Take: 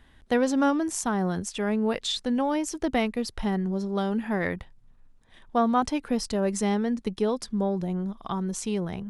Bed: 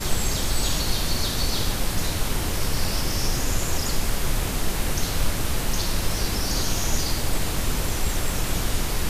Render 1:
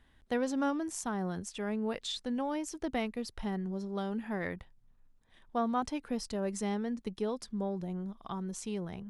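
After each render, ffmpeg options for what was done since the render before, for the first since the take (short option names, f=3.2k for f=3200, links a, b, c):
-af "volume=-8.5dB"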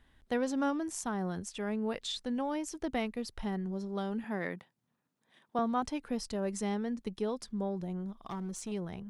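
-filter_complex "[0:a]asettb=1/sr,asplit=3[a][b][c];[a]atrim=end=4.244[d];[b]atrim=start=4.24:end=5.59,asetpts=PTS-STARTPTS,afade=t=in:d=0.004:c=qsin,afade=t=out:st=1.346:d=0.004:c=qsin,highpass=f=150:w=0.5412,highpass=f=150:w=1.3066[e];[c]atrim=start=5.586[f];[d][e]acrossfade=d=0.004:c1=hsin:c2=qsin[g];[g][f]acrossfade=d=0.004:c1=qsin:c2=hsin,asettb=1/sr,asplit=3[h][i][j];[h]atrim=end=8.094[k];[i]atrim=start=8.09:end=8.72,asetpts=PTS-STARTPTS,afade=t=in:d=0.004:c=qsin,afade=t=out:st=0.626:d=0.004:c=qsin,volume=34dB,asoftclip=hard,volume=-34dB[l];[j]atrim=start=8.716[m];[k][l]acrossfade=d=0.004:c1=hsin:c2=qsin[n];[n][m]acrossfade=d=0.004:c1=qsin:c2=hsin"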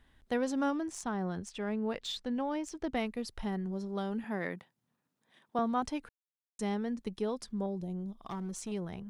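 -filter_complex "[0:a]asettb=1/sr,asplit=3[a][b][c];[a]atrim=end=0.814[d];[b]atrim=start=0.81:end=2.97,asetpts=PTS-STARTPTS,afade=t=in:d=0.004:c=qsin,afade=t=out:st=2.156:d=0.004:c=qsin,adynamicsmooth=sensitivity=7.5:basefreq=6.6k[e];[c]atrim=start=2.966[f];[d][e]acrossfade=d=0.004:c1=hsin:c2=qsin[g];[g][f]acrossfade=d=0.004:c1=qsin:c2=hsin,asettb=1/sr,asplit=3[h][i][j];[h]atrim=end=7.664[k];[i]atrim=start=7.66:end=8.19,asetpts=PTS-STARTPTS,afade=t=in:d=0.004:c=qsin,afade=t=out:st=0.526:d=0.004:c=qsin,equalizer=f=1.5k:t=o:w=1.3:g=-13.5[l];[j]atrim=start=8.186[m];[k][l]acrossfade=d=0.004:c1=hsin:c2=qsin[n];[n][m]acrossfade=d=0.004:c1=qsin:c2=hsin,asplit=3[o][p][q];[o]atrim=end=6.09,asetpts=PTS-STARTPTS,afade=t=out:st=6.086:d=0.004:c=hsin[r];[p]atrim=start=6.09:end=6.59,asetpts=PTS-STARTPTS,volume=0[s];[q]atrim=start=6.59,asetpts=PTS-STARTPTS,afade=t=in:d=0.004:c=hsin[t];[r][s][t]concat=n=3:v=0:a=1"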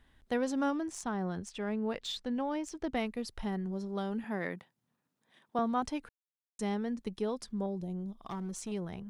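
-af anull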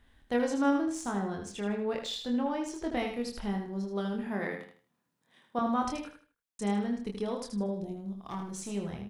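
-filter_complex "[0:a]asplit=2[a][b];[b]adelay=25,volume=-4dB[c];[a][c]amix=inputs=2:normalize=0,aecho=1:1:78|156|234|312:0.473|0.137|0.0398|0.0115"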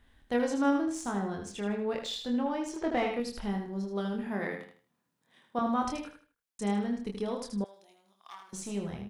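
-filter_complex "[0:a]asettb=1/sr,asplit=3[a][b][c];[a]atrim=end=2.764[d];[b]atrim=start=2.76:end=3.2,asetpts=PTS-STARTPTS,afade=t=in:d=0.004:c=qsin,afade=t=out:st=0.436:d=0.004:c=qsin,asplit=2[e][f];[f]highpass=f=720:p=1,volume=16dB,asoftclip=type=tanh:threshold=-17dB[g];[e][g]amix=inputs=2:normalize=0,lowpass=f=1.3k:p=1,volume=-6dB[h];[c]atrim=start=3.196[i];[d][h]acrossfade=d=0.004:c1=hsin:c2=qsin[j];[j][i]acrossfade=d=0.004:c1=qsin:c2=hsin,asettb=1/sr,asplit=3[k][l][m];[k]atrim=end=7.644[n];[l]atrim=start=7.64:end=8.53,asetpts=PTS-STARTPTS,afade=t=in:d=0.004:c=qsin,afade=t=out:st=0.886:d=0.004:c=qsin,highpass=1.4k[o];[m]atrim=start=8.526[p];[n][o]acrossfade=d=0.004:c1=hsin:c2=qsin[q];[q][p]acrossfade=d=0.004:c1=qsin:c2=hsin"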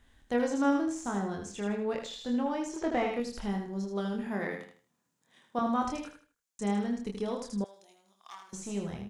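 -filter_complex "[0:a]acrossover=split=2600[a][b];[b]acompressor=threshold=-48dB:ratio=4:attack=1:release=60[c];[a][c]amix=inputs=2:normalize=0,equalizer=f=6.9k:w=1.9:g=8.5"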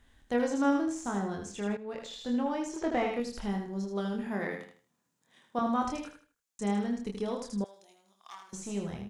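-filter_complex "[0:a]asplit=2[a][b];[a]atrim=end=1.77,asetpts=PTS-STARTPTS,afade=t=out:st=1.766:d=0.004:c=hsin:silence=0.223872[c];[b]atrim=start=1.77,asetpts=PTS-STARTPTS,afade=t=in:d=0.45:silence=0.223872[d];[c][d]concat=n=2:v=0:a=1"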